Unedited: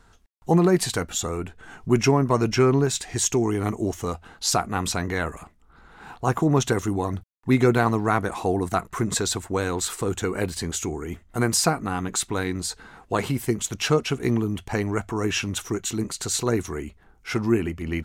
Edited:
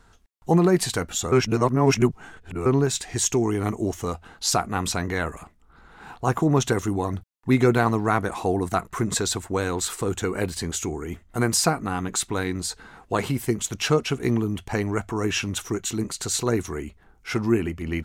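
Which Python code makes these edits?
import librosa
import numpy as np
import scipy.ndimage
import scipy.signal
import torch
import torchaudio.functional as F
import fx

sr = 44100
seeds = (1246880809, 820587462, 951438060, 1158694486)

y = fx.edit(x, sr, fx.reverse_span(start_s=1.32, length_s=1.34), tone=tone)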